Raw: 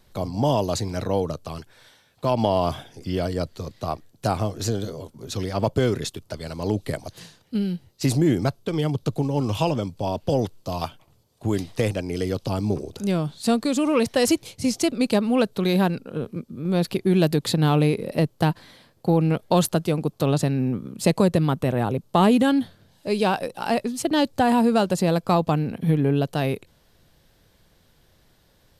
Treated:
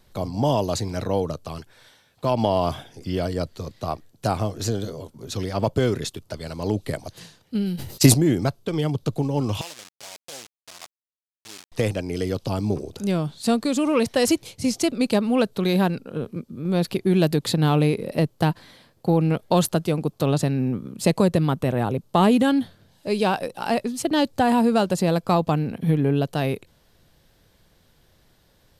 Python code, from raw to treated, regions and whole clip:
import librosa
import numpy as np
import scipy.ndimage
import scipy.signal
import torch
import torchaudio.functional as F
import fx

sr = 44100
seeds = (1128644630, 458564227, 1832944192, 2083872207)

y = fx.chain(x, sr, fx.transient(attack_db=9, sustain_db=-6),
    fx.high_shelf(hz=7400.0, db=9.5),
    fx.sustainer(db_per_s=66.0), at=(7.66, 8.14))
y = fx.chain(y, sr, fx.delta_hold(step_db=-23.5),
    fx.bandpass_q(hz=6300.0, q=0.81), at=(9.61, 11.72))